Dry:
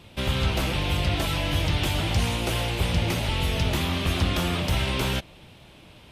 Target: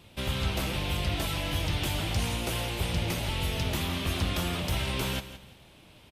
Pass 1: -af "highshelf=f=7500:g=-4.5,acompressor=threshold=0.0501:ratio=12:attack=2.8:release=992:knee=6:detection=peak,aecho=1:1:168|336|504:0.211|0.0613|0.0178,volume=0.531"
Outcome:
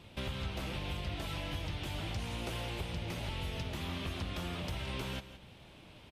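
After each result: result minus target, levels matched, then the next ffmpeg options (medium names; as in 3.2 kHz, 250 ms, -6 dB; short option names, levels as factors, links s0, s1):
compression: peak gain reduction +11 dB; 8 kHz band -5.0 dB
-af "highshelf=f=7500:g=-4.5,aecho=1:1:168|336|504:0.211|0.0613|0.0178,volume=0.531"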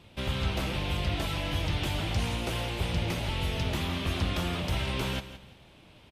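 8 kHz band -5.0 dB
-af "highshelf=f=7500:g=6.5,aecho=1:1:168|336|504:0.211|0.0613|0.0178,volume=0.531"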